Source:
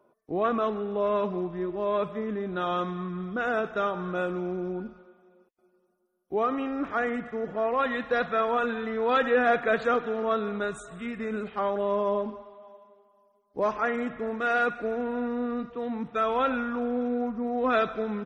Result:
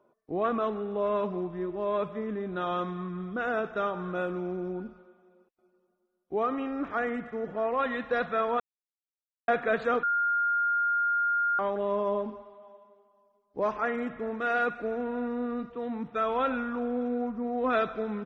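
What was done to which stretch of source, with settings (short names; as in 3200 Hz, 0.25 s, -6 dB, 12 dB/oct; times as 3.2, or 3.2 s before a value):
8.6–9.48 mute
10.03–11.59 bleep 1410 Hz -21 dBFS
whole clip: high shelf 6200 Hz -9.5 dB; gain -2 dB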